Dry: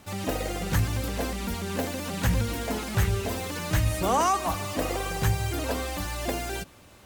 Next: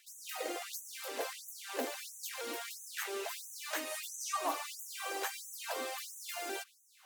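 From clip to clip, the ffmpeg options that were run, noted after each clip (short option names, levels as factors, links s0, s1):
-filter_complex "[0:a]asplit=2[s0][s1];[s1]volume=8.41,asoftclip=hard,volume=0.119,volume=0.251[s2];[s0][s2]amix=inputs=2:normalize=0,afftfilt=real='re*gte(b*sr/1024,250*pow(6000/250,0.5+0.5*sin(2*PI*1.5*pts/sr)))':imag='im*gte(b*sr/1024,250*pow(6000/250,0.5+0.5*sin(2*PI*1.5*pts/sr)))':win_size=1024:overlap=0.75,volume=0.422"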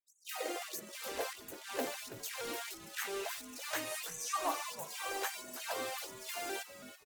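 -filter_complex "[0:a]anlmdn=0.0251,asplit=5[s0][s1][s2][s3][s4];[s1]adelay=328,afreqshift=-140,volume=0.251[s5];[s2]adelay=656,afreqshift=-280,volume=0.0902[s6];[s3]adelay=984,afreqshift=-420,volume=0.0327[s7];[s4]adelay=1312,afreqshift=-560,volume=0.0117[s8];[s0][s5][s6][s7][s8]amix=inputs=5:normalize=0"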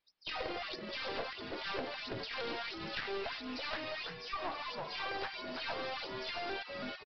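-af "acompressor=threshold=0.00501:ratio=12,aresample=11025,aeval=exprs='clip(val(0),-1,0.002)':c=same,aresample=44100,volume=4.47"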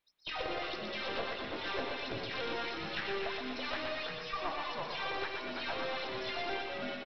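-filter_complex "[0:a]bandreject=f=4700:w=6.4,asplit=2[s0][s1];[s1]aecho=0:1:120|240|360|480|600|720|840|960:0.562|0.332|0.196|0.115|0.0681|0.0402|0.0237|0.014[s2];[s0][s2]amix=inputs=2:normalize=0,volume=1.12"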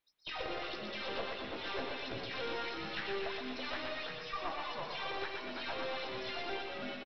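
-filter_complex "[0:a]asplit=2[s0][s1];[s1]adelay=15,volume=0.282[s2];[s0][s2]amix=inputs=2:normalize=0,volume=0.75"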